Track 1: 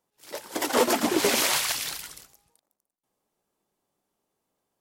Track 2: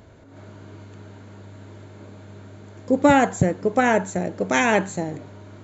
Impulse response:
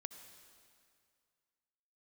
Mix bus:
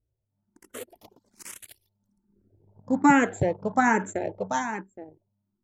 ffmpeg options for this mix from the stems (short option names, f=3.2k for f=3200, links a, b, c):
-filter_complex "[0:a]aemphasis=mode=production:type=cd,volume=-11.5dB[a];[1:a]equalizer=f=890:t=o:w=0.23:g=7,volume=-0.5dB,afade=t=in:st=2.02:d=0.78:silence=0.334965,afade=t=out:st=4.26:d=0.44:silence=0.281838,asplit=2[b][c];[c]apad=whole_len=211967[d];[a][d]sidechaingate=range=-33dB:threshold=-50dB:ratio=16:detection=peak[e];[e][b]amix=inputs=2:normalize=0,lowshelf=f=80:g=-6,anlmdn=2.51,asplit=2[f][g];[g]afreqshift=1.2[h];[f][h]amix=inputs=2:normalize=1"